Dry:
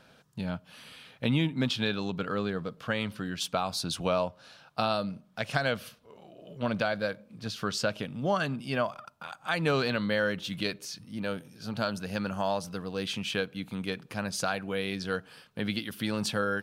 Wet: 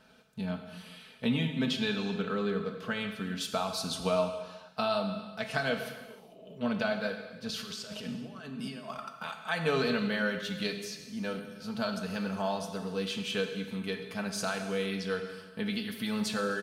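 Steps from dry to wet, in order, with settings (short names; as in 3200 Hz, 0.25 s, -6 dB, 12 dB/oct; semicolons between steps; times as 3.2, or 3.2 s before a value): comb 4.6 ms, depth 65%; 7.49–9.33 negative-ratio compressor -38 dBFS, ratio -1; non-linear reverb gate 0.49 s falling, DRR 5 dB; gain -4.5 dB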